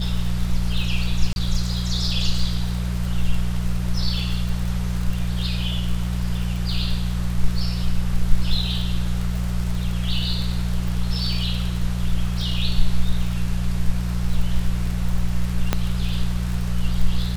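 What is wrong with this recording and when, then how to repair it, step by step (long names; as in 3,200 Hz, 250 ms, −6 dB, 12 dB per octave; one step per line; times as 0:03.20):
surface crackle 39 per second −26 dBFS
mains hum 60 Hz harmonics 3 −24 dBFS
0:01.33–0:01.36: drop-out 31 ms
0:15.73: click −5 dBFS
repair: click removal
hum removal 60 Hz, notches 3
repair the gap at 0:01.33, 31 ms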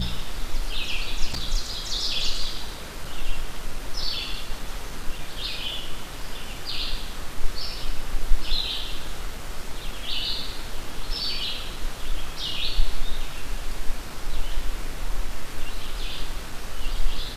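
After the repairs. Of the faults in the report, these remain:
0:15.73: click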